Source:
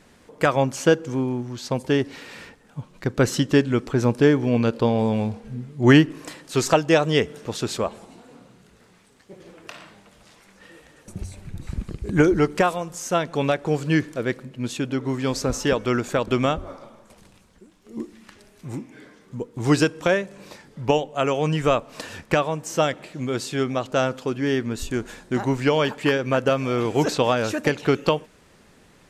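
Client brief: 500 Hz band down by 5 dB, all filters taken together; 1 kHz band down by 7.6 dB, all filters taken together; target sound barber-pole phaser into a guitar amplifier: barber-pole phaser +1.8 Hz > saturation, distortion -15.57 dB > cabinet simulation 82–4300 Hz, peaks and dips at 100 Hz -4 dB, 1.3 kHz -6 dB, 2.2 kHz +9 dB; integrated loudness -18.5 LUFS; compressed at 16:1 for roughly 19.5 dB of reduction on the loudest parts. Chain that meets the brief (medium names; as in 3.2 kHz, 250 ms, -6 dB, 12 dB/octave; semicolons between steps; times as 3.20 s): peaking EQ 500 Hz -4.5 dB; peaking EQ 1 kHz -7 dB; compression 16:1, threshold -30 dBFS; barber-pole phaser +1.8 Hz; saturation -31 dBFS; cabinet simulation 82–4300 Hz, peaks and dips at 100 Hz -4 dB, 1.3 kHz -6 dB, 2.2 kHz +9 dB; trim +23 dB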